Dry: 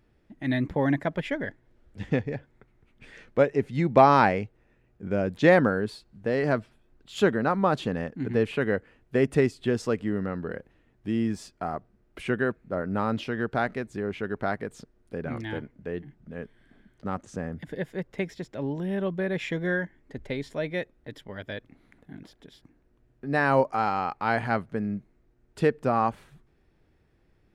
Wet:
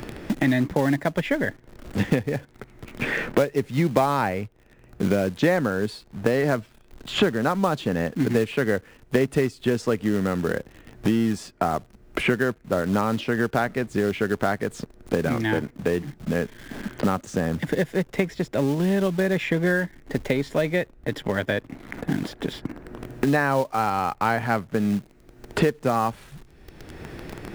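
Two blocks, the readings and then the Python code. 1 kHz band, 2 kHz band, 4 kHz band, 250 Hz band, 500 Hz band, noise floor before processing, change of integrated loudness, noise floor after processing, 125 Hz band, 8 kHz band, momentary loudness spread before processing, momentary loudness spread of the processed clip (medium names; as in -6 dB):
+0.5 dB, +3.5 dB, +7.5 dB, +5.0 dB, +2.5 dB, -65 dBFS, +2.5 dB, -53 dBFS, +4.5 dB, +10.5 dB, 16 LU, 11 LU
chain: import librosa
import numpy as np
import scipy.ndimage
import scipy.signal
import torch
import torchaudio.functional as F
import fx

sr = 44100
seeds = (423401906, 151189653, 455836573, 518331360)

p1 = fx.quant_companded(x, sr, bits=4)
p2 = x + (p1 * 10.0 ** (-6.0 / 20.0))
y = fx.band_squash(p2, sr, depth_pct=100)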